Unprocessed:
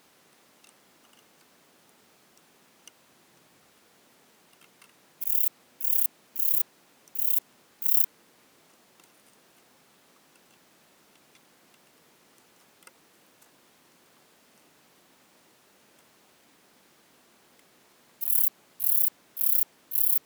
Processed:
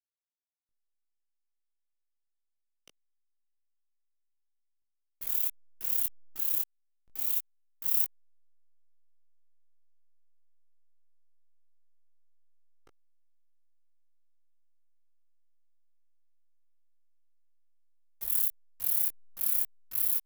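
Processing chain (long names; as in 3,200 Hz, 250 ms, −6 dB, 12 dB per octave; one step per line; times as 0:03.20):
slack as between gear wheels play −32 dBFS
chorus effect 0.39 Hz, delay 18.5 ms, depth 2.2 ms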